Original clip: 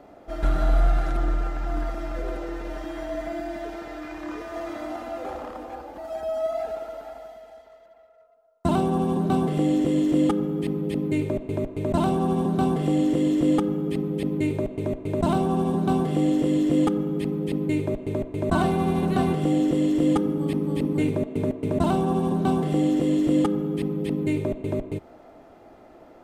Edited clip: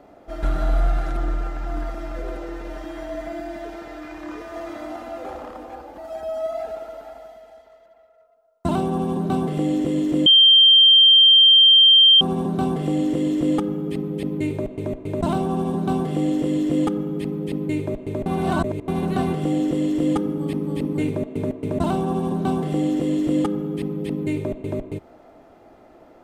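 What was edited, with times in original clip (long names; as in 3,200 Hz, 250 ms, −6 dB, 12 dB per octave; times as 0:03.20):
0:10.26–0:12.21: beep over 3,160 Hz −8.5 dBFS
0:18.26–0:18.88: reverse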